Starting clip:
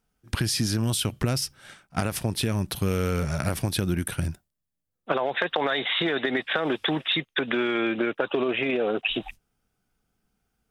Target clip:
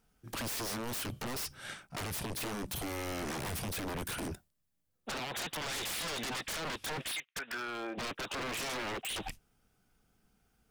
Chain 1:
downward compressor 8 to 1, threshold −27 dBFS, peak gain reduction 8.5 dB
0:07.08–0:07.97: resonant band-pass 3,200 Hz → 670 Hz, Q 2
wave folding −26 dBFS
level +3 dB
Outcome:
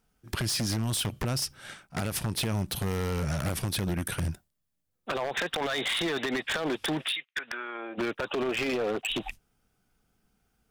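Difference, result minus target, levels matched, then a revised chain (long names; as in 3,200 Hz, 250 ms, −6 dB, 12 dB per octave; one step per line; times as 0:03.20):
wave folding: distortion −24 dB
downward compressor 8 to 1, threshold −27 dBFS, peak gain reduction 8.5 dB
0:07.08–0:07.97: resonant band-pass 3,200 Hz → 670 Hz, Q 2
wave folding −35.5 dBFS
level +3 dB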